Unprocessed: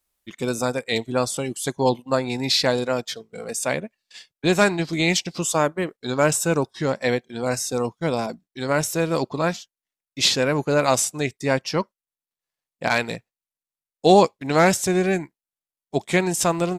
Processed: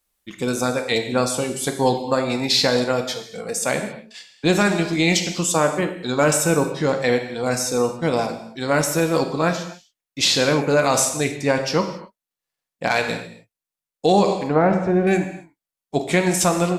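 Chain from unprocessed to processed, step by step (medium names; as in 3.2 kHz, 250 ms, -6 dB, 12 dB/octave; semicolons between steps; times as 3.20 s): 14.48–15.07 s: low-pass 1.2 kHz 12 dB/octave; gated-style reverb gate 300 ms falling, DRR 5 dB; loudness maximiser +8 dB; trim -6 dB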